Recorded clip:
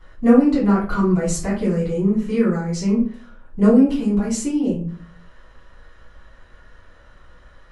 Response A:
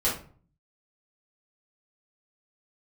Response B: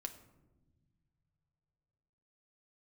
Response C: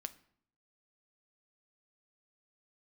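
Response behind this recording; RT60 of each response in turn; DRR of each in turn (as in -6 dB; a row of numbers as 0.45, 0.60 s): A; 0.45 s, not exponential, 0.65 s; -8.5, 6.5, 10.5 dB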